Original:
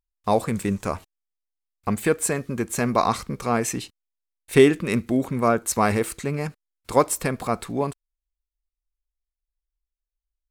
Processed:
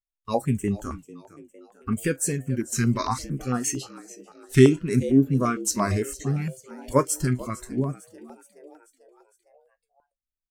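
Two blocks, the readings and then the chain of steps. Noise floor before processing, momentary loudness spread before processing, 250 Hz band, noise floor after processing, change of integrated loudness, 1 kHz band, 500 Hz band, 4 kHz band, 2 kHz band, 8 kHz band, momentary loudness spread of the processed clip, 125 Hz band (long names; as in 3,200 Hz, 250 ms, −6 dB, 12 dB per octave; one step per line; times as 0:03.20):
below −85 dBFS, 11 LU, +1.0 dB, below −85 dBFS, −1.0 dB, −6.0 dB, −3.5 dB, −2.5 dB, −5.0 dB, 0.0 dB, 15 LU, +4.0 dB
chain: tuned comb filter 130 Hz, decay 0.15 s, harmonics all, mix 70%
dynamic equaliser 6,100 Hz, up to +7 dB, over −50 dBFS, Q 1.6
noise reduction from a noise print of the clip's start 16 dB
low-shelf EQ 280 Hz +9.5 dB
echo with shifted repeats 440 ms, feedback 54%, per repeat +81 Hz, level −18 dB
pitch vibrato 0.63 Hz 82 cents
notch on a step sequencer 8.8 Hz 570–4,000 Hz
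level +1.5 dB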